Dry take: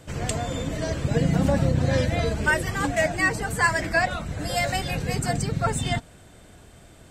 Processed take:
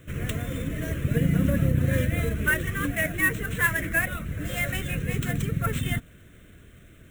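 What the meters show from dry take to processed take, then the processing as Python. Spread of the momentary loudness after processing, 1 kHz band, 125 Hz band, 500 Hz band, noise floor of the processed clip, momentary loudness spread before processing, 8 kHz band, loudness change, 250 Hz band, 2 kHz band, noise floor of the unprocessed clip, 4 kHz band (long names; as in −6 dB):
8 LU, −10.0 dB, −0.5 dB, −6.5 dB, −51 dBFS, 7 LU, −4.5 dB, −1.5 dB, −1.0 dB, −1.0 dB, −50 dBFS, −6.0 dB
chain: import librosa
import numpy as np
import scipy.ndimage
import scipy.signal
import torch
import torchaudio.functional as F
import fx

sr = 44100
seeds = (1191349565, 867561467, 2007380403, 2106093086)

y = fx.sample_hold(x, sr, seeds[0], rate_hz=12000.0, jitter_pct=20)
y = fx.fixed_phaser(y, sr, hz=2000.0, stages=4)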